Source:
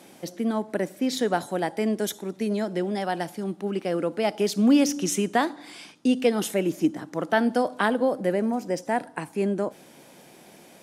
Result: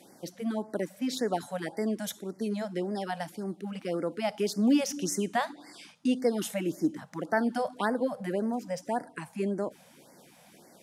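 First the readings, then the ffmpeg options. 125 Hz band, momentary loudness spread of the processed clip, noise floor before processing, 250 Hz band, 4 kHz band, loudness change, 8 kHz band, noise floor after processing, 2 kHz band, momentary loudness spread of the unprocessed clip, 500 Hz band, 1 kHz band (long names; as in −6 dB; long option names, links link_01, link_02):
−5.0 dB, 9 LU, −51 dBFS, −5.5 dB, −5.5 dB, −5.5 dB, −5.0 dB, −57 dBFS, −6.5 dB, 8 LU, −6.0 dB, −5.5 dB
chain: -af "afftfilt=real='re*(1-between(b*sr/1024,300*pow(3200/300,0.5+0.5*sin(2*PI*1.8*pts/sr))/1.41,300*pow(3200/300,0.5+0.5*sin(2*PI*1.8*pts/sr))*1.41))':imag='im*(1-between(b*sr/1024,300*pow(3200/300,0.5+0.5*sin(2*PI*1.8*pts/sr))/1.41,300*pow(3200/300,0.5+0.5*sin(2*PI*1.8*pts/sr))*1.41))':win_size=1024:overlap=0.75,volume=-5dB"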